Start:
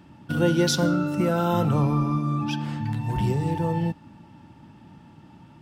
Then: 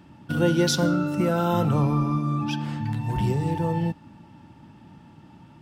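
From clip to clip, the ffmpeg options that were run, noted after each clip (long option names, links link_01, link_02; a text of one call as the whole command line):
ffmpeg -i in.wav -af anull out.wav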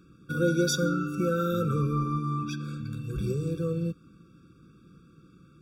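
ffmpeg -i in.wav -af "equalizer=frequency=100:width_type=o:width=0.67:gain=-11,equalizer=frequency=250:width_type=o:width=0.67:gain=-9,equalizer=frequency=2500:width_type=o:width=0.67:gain=-8,afftfilt=real='re*eq(mod(floor(b*sr/1024/550),2),0)':imag='im*eq(mod(floor(b*sr/1024/550),2),0)':win_size=1024:overlap=0.75" out.wav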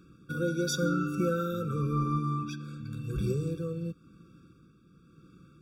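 ffmpeg -i in.wav -af "tremolo=f=0.93:d=0.49" out.wav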